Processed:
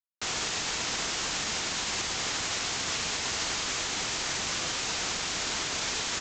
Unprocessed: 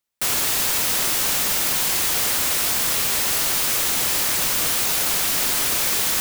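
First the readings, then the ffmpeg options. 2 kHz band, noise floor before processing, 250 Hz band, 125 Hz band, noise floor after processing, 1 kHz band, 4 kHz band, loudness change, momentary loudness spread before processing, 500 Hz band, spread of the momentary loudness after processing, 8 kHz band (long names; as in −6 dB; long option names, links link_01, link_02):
−6.0 dB, −22 dBFS, −6.0 dB, −6.0 dB, −33 dBFS, −6.0 dB, −6.0 dB, −11.0 dB, 0 LU, −6.5 dB, 0 LU, −10.0 dB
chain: -af "bandreject=frequency=540:width=12,alimiter=limit=-17.5dB:level=0:latency=1:release=153,afreqshift=23,aresample=16000,acrusher=bits=5:mix=0:aa=0.000001,aresample=44100"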